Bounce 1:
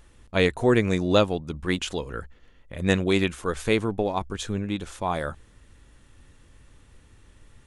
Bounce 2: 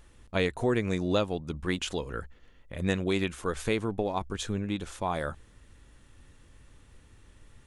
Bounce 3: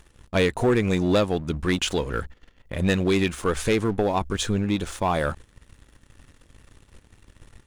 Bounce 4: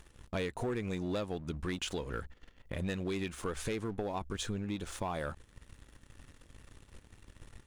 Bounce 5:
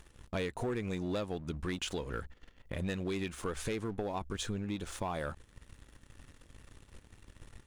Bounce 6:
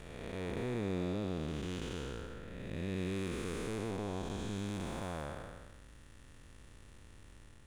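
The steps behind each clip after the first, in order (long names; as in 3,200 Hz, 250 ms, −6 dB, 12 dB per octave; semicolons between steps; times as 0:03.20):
downward compressor 2 to 1, threshold −24 dBFS, peak gain reduction 6 dB; level −2 dB
leveller curve on the samples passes 2; level +1 dB
downward compressor 3 to 1, threshold −33 dBFS, peak gain reduction 12 dB; level −3.5 dB
no processing that can be heard
spectrum smeared in time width 539 ms; level +2 dB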